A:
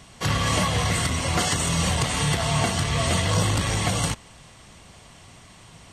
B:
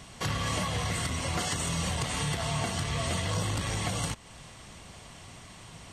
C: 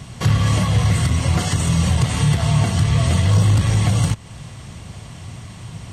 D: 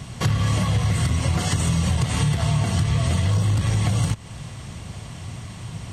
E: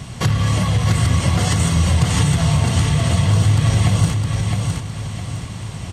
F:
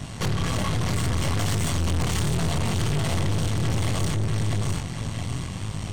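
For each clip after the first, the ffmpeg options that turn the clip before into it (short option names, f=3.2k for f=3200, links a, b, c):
-af "acompressor=threshold=-34dB:ratio=2"
-af "equalizer=f=110:t=o:w=1.8:g=13,asoftclip=type=hard:threshold=-14dB,volume=6dB"
-af "acompressor=threshold=-17dB:ratio=6"
-af "aecho=1:1:661|1322|1983|2644:0.631|0.215|0.0729|0.0248,volume=3.5dB"
-af "flanger=delay=19.5:depth=5.9:speed=0.68,aeval=exprs='(tanh(22.4*val(0)+0.75)-tanh(0.75))/22.4':c=same,volume=4.5dB"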